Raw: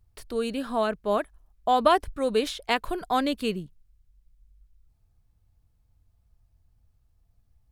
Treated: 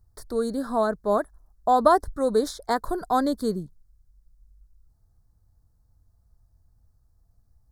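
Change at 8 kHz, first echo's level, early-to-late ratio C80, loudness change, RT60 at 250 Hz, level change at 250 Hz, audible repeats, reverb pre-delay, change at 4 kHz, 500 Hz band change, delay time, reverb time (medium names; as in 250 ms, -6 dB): +2.5 dB, no echo, no reverb, +2.0 dB, no reverb, +2.5 dB, no echo, no reverb, -7.0 dB, +2.5 dB, no echo, no reverb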